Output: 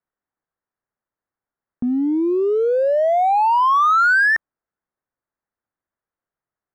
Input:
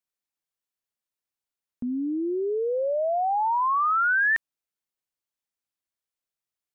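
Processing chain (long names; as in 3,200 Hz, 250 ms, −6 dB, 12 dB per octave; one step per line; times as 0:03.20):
Butterworth low-pass 1,800 Hz 36 dB per octave
in parallel at −9 dB: hard clipping −28 dBFS, distortion −10 dB
on the sum: level +6.5 dB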